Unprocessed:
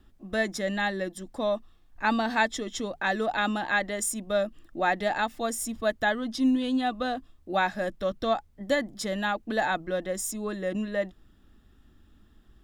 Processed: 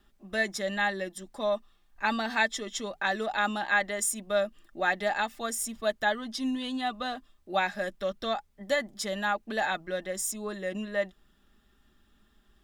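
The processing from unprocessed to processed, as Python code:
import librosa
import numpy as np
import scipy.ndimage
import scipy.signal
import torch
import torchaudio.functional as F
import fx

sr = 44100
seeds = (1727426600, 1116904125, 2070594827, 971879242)

y = fx.low_shelf(x, sr, hz=480.0, db=-9.5)
y = y + 0.43 * np.pad(y, (int(5.0 * sr / 1000.0), 0))[:len(y)]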